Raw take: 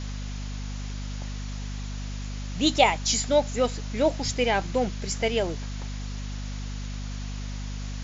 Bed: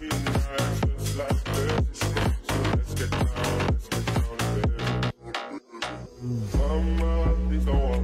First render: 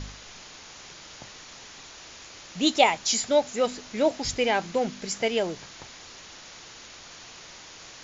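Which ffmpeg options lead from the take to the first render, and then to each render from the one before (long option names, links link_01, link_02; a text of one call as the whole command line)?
ffmpeg -i in.wav -af "bandreject=frequency=50:width_type=h:width=4,bandreject=frequency=100:width_type=h:width=4,bandreject=frequency=150:width_type=h:width=4,bandreject=frequency=200:width_type=h:width=4,bandreject=frequency=250:width_type=h:width=4" out.wav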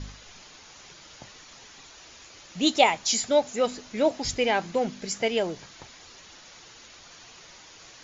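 ffmpeg -i in.wav -af "afftdn=noise_reduction=6:noise_floor=-46" out.wav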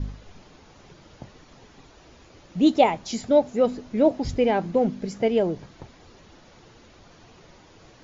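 ffmpeg -i in.wav -af "lowpass=6100,tiltshelf=frequency=890:gain=9" out.wav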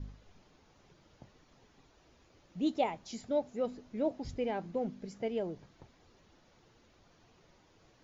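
ffmpeg -i in.wav -af "volume=-13.5dB" out.wav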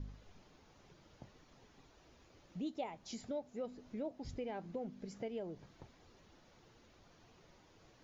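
ffmpeg -i in.wav -af "acompressor=threshold=-43dB:ratio=2.5" out.wav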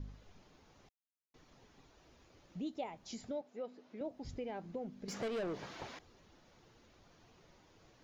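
ffmpeg -i in.wav -filter_complex "[0:a]asettb=1/sr,asplit=3[link_01][link_02][link_03];[link_01]atrim=end=3.414[link_04];[link_02]atrim=start=3.41:end=4.01,asetpts=PTS-STARTPTS,afade=type=in:duration=0.004:curve=qsin,afade=type=out:start_time=0.596:duration=0.004:curve=qsin,highpass=300,lowpass=4800[link_05];[link_03]atrim=start=4.006[link_06];[link_04][link_05]acrossfade=duration=0.004:curve1=hsin:curve2=qsin[link_07];[link_07][link_06]acrossfade=duration=0.004:curve1=qsin:curve2=hsin,asettb=1/sr,asplit=3[link_08][link_09][link_10];[link_08]atrim=end=5.084[link_11];[link_09]atrim=start=5.08:end=5.99,asetpts=PTS-STARTPTS,afade=type=in:duration=0.004:curve=qsin,afade=type=out:start_time=0.906:duration=0.004:curve=qsin,asplit=2[link_12][link_13];[link_13]highpass=frequency=720:poles=1,volume=26dB,asoftclip=type=tanh:threshold=-31.5dB[link_14];[link_12][link_14]amix=inputs=2:normalize=0,lowpass=frequency=4100:poles=1,volume=-6dB[link_15];[link_10]atrim=start=5.986[link_16];[link_11][link_15]acrossfade=duration=0.004:curve1=hsin:curve2=qsin[link_17];[link_17][link_16]acrossfade=duration=0.004:curve1=qsin:curve2=hsin,asplit=3[link_18][link_19][link_20];[link_18]atrim=end=0.89,asetpts=PTS-STARTPTS,afade=type=out:start_time=0.886:duration=0.004:curve=hsin[link_21];[link_19]atrim=start=0.89:end=1.34,asetpts=PTS-STARTPTS,volume=0[link_22];[link_20]atrim=start=1.34,asetpts=PTS-STARTPTS,afade=type=in:duration=0.004:curve=hsin[link_23];[link_21][link_22][link_23]concat=n=3:v=0:a=1" out.wav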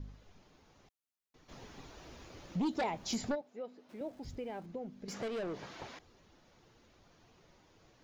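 ffmpeg -i in.wav -filter_complex "[0:a]asplit=3[link_01][link_02][link_03];[link_01]afade=type=out:start_time=1.48:duration=0.02[link_04];[link_02]aeval=exprs='0.0355*sin(PI/2*2.51*val(0)/0.0355)':channel_layout=same,afade=type=in:start_time=1.48:duration=0.02,afade=type=out:start_time=3.34:duration=0.02[link_05];[link_03]afade=type=in:start_time=3.34:duration=0.02[link_06];[link_04][link_05][link_06]amix=inputs=3:normalize=0,asettb=1/sr,asplit=3[link_07][link_08][link_09];[link_07]atrim=end=3.894[link_10];[link_08]atrim=start=3.89:end=4.66,asetpts=PTS-STARTPTS,afade=type=in:duration=0.004:curve=qsin,afade=type=out:start_time=0.766:duration=0.004:curve=qsin,aeval=exprs='val(0)+0.5*0.00112*sgn(val(0))':channel_layout=same[link_11];[link_09]atrim=start=4.656[link_12];[link_10][link_11]acrossfade=duration=0.004:curve1=hsin:curve2=qsin[link_13];[link_13][link_12]acrossfade=duration=0.004:curve1=qsin:curve2=hsin" out.wav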